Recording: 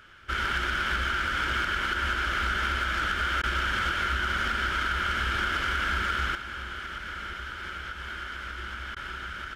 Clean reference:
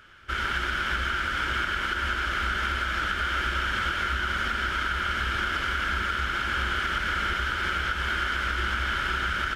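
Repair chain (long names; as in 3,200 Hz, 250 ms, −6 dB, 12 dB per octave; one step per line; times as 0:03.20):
clipped peaks rebuilt −20.5 dBFS
repair the gap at 0:03.42/0:08.95, 13 ms
level 0 dB, from 0:06.35 +9.5 dB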